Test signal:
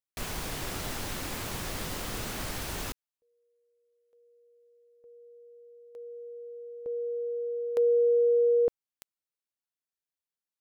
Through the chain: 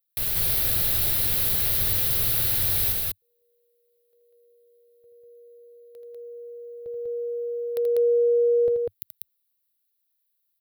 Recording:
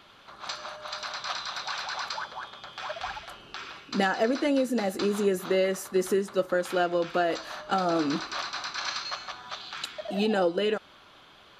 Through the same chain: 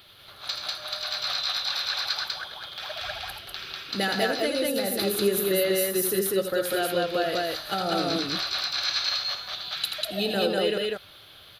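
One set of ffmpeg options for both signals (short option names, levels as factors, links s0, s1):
-af "highshelf=f=6600:g=-4.5,aexciter=amount=12.2:drive=3.9:freq=10000,equalizer=f=100:t=o:w=0.67:g=8,equalizer=f=250:t=o:w=0.67:g=-9,equalizer=f=1000:t=o:w=0.67:g=-9,equalizer=f=4000:t=o:w=0.67:g=9,aecho=1:1:81.63|195.3:0.447|0.891"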